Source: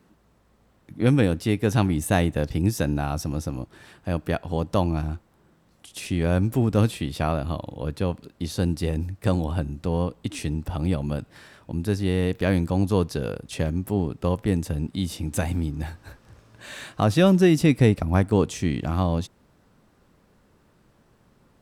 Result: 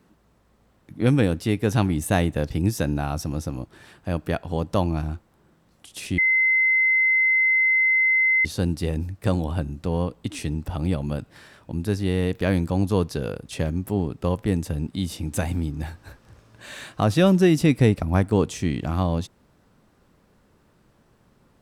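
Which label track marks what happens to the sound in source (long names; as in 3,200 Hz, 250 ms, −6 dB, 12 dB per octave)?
6.180000	8.450000	beep over 2,060 Hz −16 dBFS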